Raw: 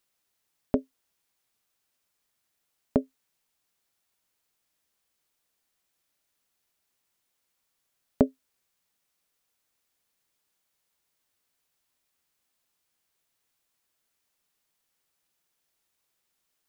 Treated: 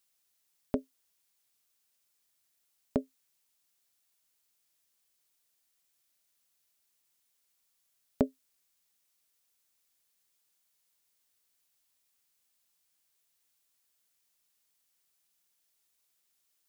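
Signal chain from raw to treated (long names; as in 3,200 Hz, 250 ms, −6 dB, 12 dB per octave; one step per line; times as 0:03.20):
high-shelf EQ 2,900 Hz +9.5 dB
level −6 dB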